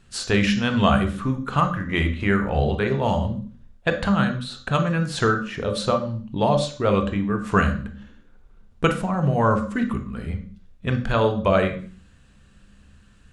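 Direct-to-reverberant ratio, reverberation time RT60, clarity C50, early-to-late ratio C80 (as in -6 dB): 5.0 dB, 0.45 s, 9.5 dB, 13.5 dB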